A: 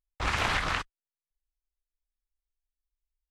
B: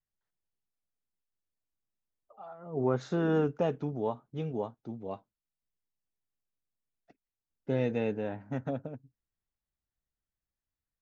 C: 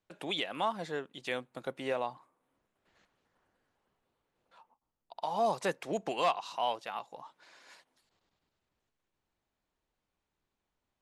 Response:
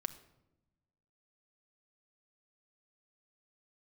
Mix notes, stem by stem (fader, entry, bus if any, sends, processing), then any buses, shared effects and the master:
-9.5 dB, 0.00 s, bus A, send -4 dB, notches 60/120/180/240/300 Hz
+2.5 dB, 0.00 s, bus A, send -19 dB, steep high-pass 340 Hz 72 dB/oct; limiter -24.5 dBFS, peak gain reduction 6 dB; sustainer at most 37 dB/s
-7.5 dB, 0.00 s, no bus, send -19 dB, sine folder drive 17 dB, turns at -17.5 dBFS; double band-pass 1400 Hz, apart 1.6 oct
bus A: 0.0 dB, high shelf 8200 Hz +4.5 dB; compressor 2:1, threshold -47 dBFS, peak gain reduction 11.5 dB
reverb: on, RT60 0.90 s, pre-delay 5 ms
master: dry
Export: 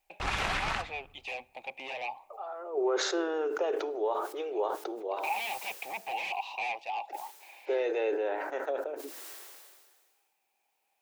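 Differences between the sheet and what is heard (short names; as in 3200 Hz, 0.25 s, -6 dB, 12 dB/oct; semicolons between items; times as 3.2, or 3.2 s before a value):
stem B +2.5 dB -> +10.0 dB; reverb return +8.0 dB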